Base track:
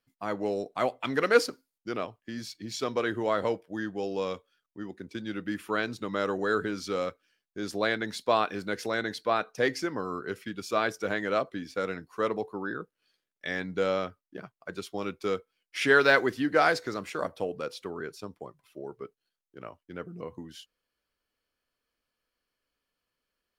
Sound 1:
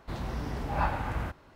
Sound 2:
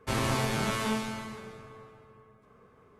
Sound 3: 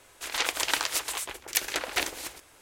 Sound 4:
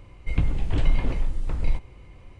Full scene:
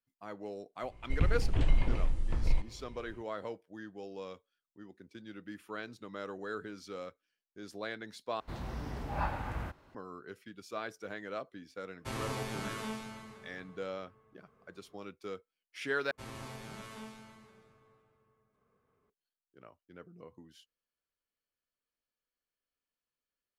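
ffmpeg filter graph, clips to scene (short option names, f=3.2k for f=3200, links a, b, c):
-filter_complex "[2:a]asplit=2[a][b];[0:a]volume=-12.5dB[c];[4:a]dynaudnorm=f=120:g=3:m=4dB[d];[c]asplit=3[e][f][g];[e]atrim=end=8.404[h];[1:a]atrim=end=1.55,asetpts=PTS-STARTPTS,volume=-5.5dB[i];[f]atrim=start=9.946:end=16.114[j];[b]atrim=end=2.99,asetpts=PTS-STARTPTS,volume=-17dB[k];[g]atrim=start=19.096[l];[d]atrim=end=2.39,asetpts=PTS-STARTPTS,volume=-9dB,afade=t=in:d=0.004:c=hsin,afade=t=out:st=2.386:d=0.004:c=hsin,adelay=830[m];[a]atrim=end=2.99,asetpts=PTS-STARTPTS,volume=-9.5dB,afade=t=in:d=0.004:c=hsin,afade=t=out:st=2.986:d=0.004:c=hsin,adelay=11980[n];[h][i]acrossfade=d=0.004:c1=hsin:c2=hsin[o];[o][j]acrossfade=d=0.004:c1=hsin:c2=hsin[p];[p][k]acrossfade=d=0.004:c1=hsin:c2=hsin[q];[q][l]acrossfade=d=0.004:c1=hsin:c2=hsin[r];[r][m][n]amix=inputs=3:normalize=0"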